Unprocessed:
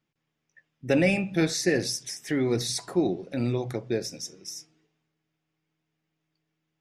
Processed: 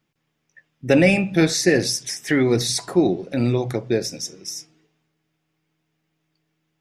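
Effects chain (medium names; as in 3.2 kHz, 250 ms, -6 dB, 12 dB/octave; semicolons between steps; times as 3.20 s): 1.95–2.43 s: dynamic bell 1.7 kHz, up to +5 dB, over -45 dBFS, Q 0.84; trim +7 dB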